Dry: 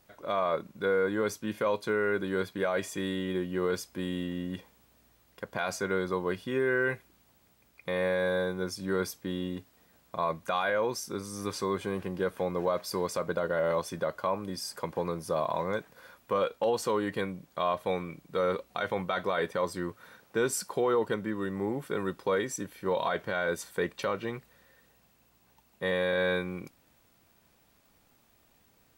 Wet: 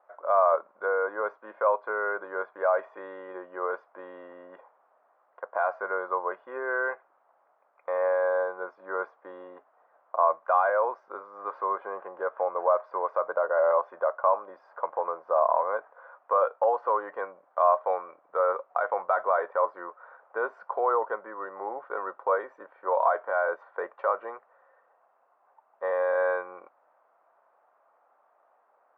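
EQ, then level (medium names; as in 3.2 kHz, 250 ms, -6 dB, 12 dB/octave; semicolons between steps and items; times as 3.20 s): Chebyshev band-pass 600–1300 Hz, order 2; band-pass filter 860 Hz, Q 0.59; distance through air 73 m; +9.0 dB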